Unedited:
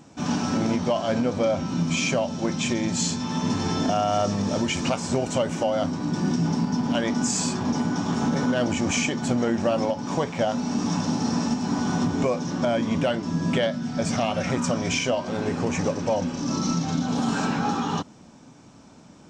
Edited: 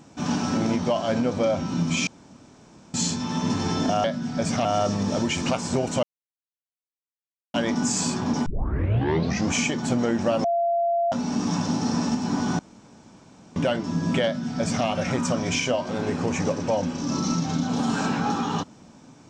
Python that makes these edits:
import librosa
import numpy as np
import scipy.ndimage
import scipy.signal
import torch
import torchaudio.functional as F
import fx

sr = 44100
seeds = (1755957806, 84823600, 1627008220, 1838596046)

y = fx.edit(x, sr, fx.room_tone_fill(start_s=2.07, length_s=0.87),
    fx.silence(start_s=5.42, length_s=1.51),
    fx.tape_start(start_s=7.85, length_s=1.07),
    fx.bleep(start_s=9.83, length_s=0.68, hz=685.0, db=-19.5),
    fx.room_tone_fill(start_s=11.98, length_s=0.97),
    fx.duplicate(start_s=13.64, length_s=0.61, to_s=4.04), tone=tone)